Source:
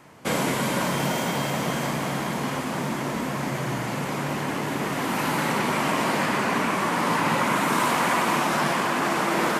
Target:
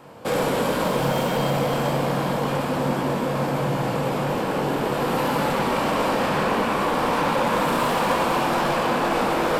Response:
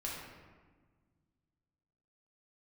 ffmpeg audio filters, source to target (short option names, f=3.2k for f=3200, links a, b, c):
-filter_complex "[0:a]equalizer=f=500:t=o:w=0.33:g=10,equalizer=f=800:t=o:w=0.33:g=4,equalizer=f=2k:t=o:w=0.33:g=-8,equalizer=f=6.3k:t=o:w=0.33:g=-8,equalizer=f=10k:t=o:w=0.33:g=-6,asoftclip=type=tanh:threshold=-22.5dB,asplit=2[a][b];[1:a]atrim=start_sample=2205,adelay=21[c];[b][c]afir=irnorm=-1:irlink=0,volume=-4dB[d];[a][d]amix=inputs=2:normalize=0,volume=2.5dB"